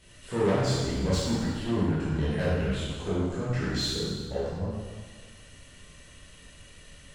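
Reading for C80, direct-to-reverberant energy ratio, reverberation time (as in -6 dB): 0.5 dB, -10.0 dB, 1.6 s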